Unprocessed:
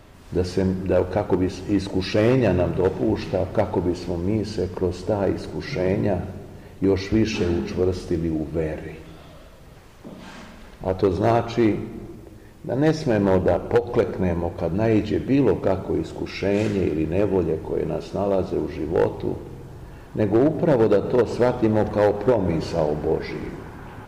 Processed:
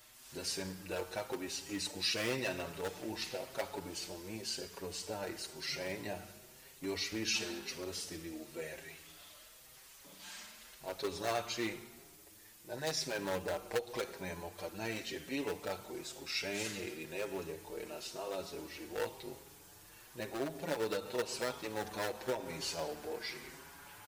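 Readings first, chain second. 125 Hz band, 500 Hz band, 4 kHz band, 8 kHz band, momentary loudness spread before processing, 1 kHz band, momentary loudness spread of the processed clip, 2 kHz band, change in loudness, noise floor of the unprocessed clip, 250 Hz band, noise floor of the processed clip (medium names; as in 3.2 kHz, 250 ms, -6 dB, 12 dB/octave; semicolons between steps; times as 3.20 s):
-25.0 dB, -19.0 dB, -1.5 dB, no reading, 15 LU, -14.5 dB, 16 LU, -8.0 dB, -17.0 dB, -44 dBFS, -22.0 dB, -58 dBFS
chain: pre-emphasis filter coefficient 0.97; endless flanger 6.2 ms +0.95 Hz; trim +6.5 dB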